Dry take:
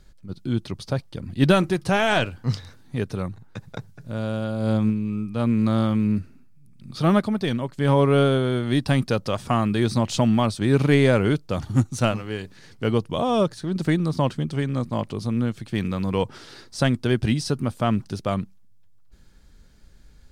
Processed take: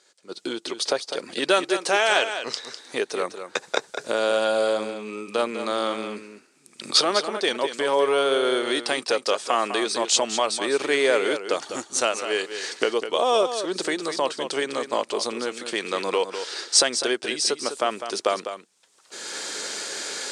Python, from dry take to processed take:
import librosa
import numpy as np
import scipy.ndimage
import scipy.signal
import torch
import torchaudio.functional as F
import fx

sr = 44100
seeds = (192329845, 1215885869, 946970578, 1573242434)

p1 = fx.recorder_agc(x, sr, target_db=-10.0, rise_db_per_s=26.0, max_gain_db=30)
p2 = scipy.signal.sosfilt(scipy.signal.cheby1(3, 1.0, [400.0, 8400.0], 'bandpass', fs=sr, output='sos'), p1)
p3 = fx.high_shelf(p2, sr, hz=4300.0, db=10.0)
y = p3 + fx.echo_single(p3, sr, ms=202, db=-9.5, dry=0)